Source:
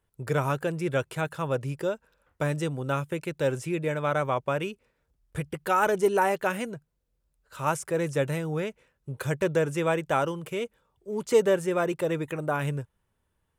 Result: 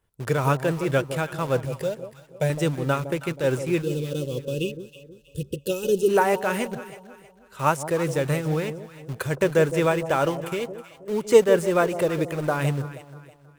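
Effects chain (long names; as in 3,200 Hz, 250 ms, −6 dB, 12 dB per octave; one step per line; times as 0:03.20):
shaped tremolo triangle 4.6 Hz, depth 55%
in parallel at −9 dB: bit-depth reduction 6 bits, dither none
0:01.65–0:02.50: on the sum: phaser with its sweep stopped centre 310 Hz, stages 6
0:03.81–0:06.09: gain on a spectral selection 580–2,500 Hz −28 dB
delay that swaps between a low-pass and a high-pass 160 ms, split 820 Hz, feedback 59%, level −10 dB
level +4 dB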